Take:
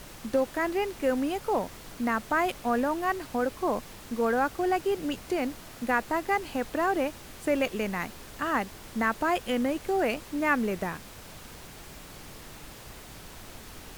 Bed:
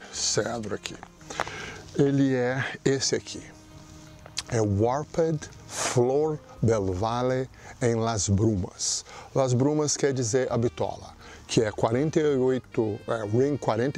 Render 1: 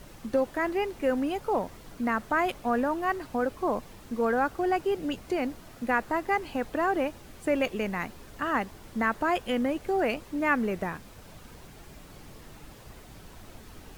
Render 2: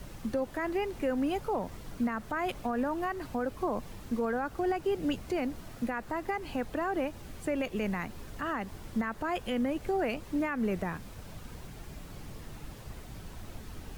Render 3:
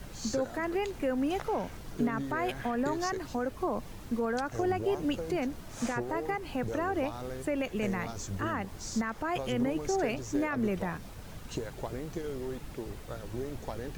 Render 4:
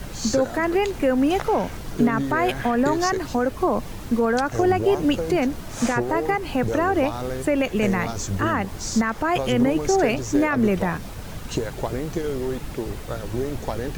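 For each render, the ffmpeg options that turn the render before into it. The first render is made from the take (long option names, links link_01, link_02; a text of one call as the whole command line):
ffmpeg -i in.wav -af "afftdn=noise_reduction=7:noise_floor=-46" out.wav
ffmpeg -i in.wav -filter_complex "[0:a]acrossover=split=200|1700|5300[link_01][link_02][link_03][link_04];[link_01]acontrast=28[link_05];[link_05][link_02][link_03][link_04]amix=inputs=4:normalize=0,alimiter=limit=-22.5dB:level=0:latency=1:release=157" out.wav
ffmpeg -i in.wav -i bed.wav -filter_complex "[1:a]volume=-14.5dB[link_01];[0:a][link_01]amix=inputs=2:normalize=0" out.wav
ffmpeg -i in.wav -af "volume=10.5dB" out.wav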